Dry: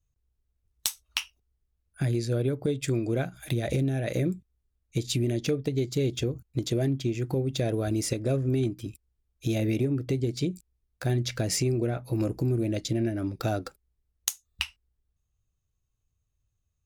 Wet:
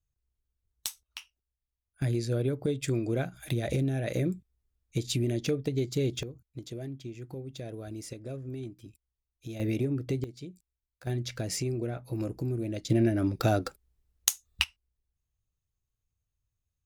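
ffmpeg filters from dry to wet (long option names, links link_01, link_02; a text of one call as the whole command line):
ffmpeg -i in.wav -af "asetnsamples=nb_out_samples=441:pad=0,asendcmd='1.03 volume volume -13.5dB;2.02 volume volume -2dB;6.23 volume volume -12.5dB;9.6 volume volume -3dB;10.24 volume volume -14.5dB;11.07 volume volume -5.5dB;12.9 volume volume 3dB;14.64 volume volume -6dB',volume=-6.5dB" out.wav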